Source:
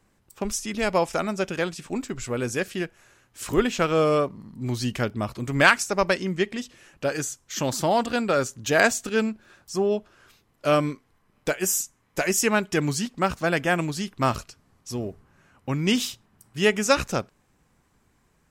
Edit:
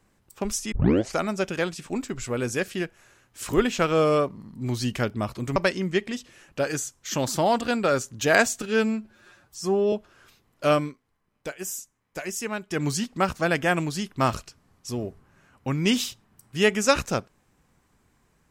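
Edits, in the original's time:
0:00.72: tape start 0.44 s
0:05.56–0:06.01: remove
0:09.07–0:09.94: time-stretch 1.5×
0:10.74–0:12.90: duck −9 dB, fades 0.21 s

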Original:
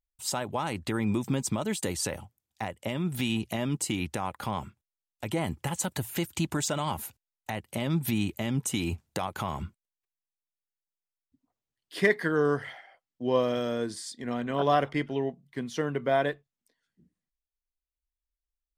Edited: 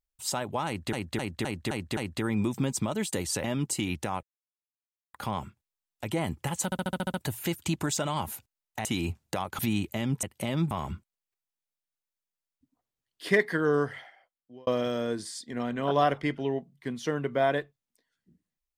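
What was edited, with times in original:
0:00.67–0:00.93: repeat, 6 plays
0:02.14–0:03.55: remove
0:04.34: splice in silence 0.91 s
0:05.85: stutter 0.07 s, 8 plays
0:07.56–0:08.04: swap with 0:08.68–0:09.42
0:12.49–0:13.38: fade out

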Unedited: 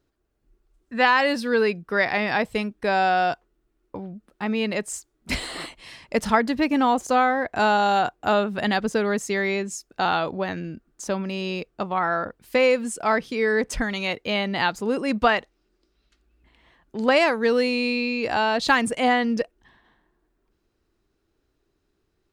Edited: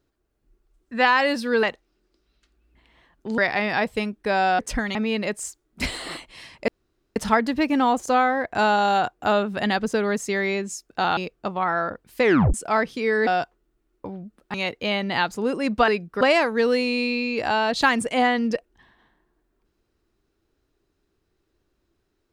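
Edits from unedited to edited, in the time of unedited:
0:01.63–0:01.96: swap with 0:15.32–0:17.07
0:03.17–0:04.44: swap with 0:13.62–0:13.98
0:06.17: splice in room tone 0.48 s
0:10.18–0:11.52: remove
0:12.57: tape stop 0.32 s

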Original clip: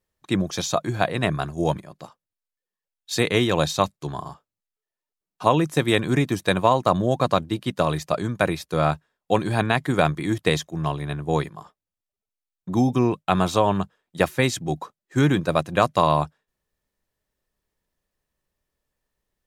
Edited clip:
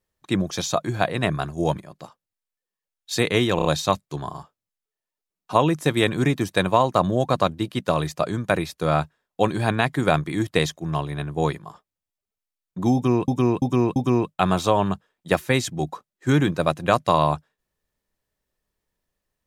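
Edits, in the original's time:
0:03.56: stutter 0.03 s, 4 plays
0:12.85–0:13.19: repeat, 4 plays

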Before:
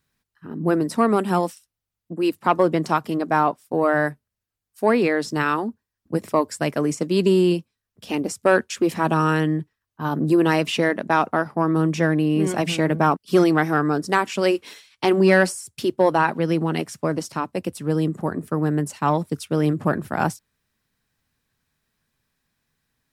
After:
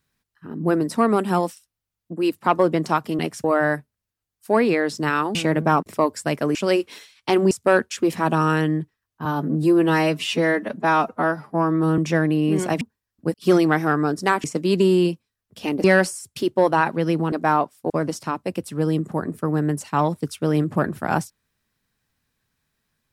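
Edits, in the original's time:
0:03.19–0:03.77: swap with 0:16.74–0:16.99
0:05.68–0:06.21: swap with 0:12.69–0:13.20
0:06.90–0:08.30: swap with 0:14.30–0:15.26
0:10.04–0:11.86: time-stretch 1.5×

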